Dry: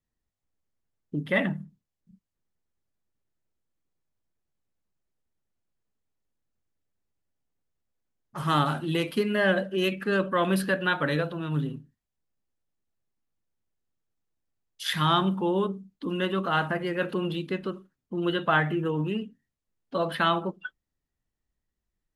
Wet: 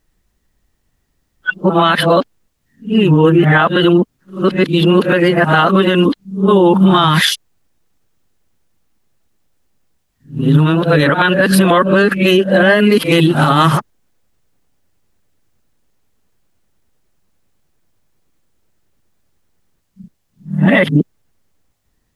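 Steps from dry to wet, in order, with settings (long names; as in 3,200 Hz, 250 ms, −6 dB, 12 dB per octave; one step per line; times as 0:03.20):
played backwards from end to start
boost into a limiter +21 dB
level −1 dB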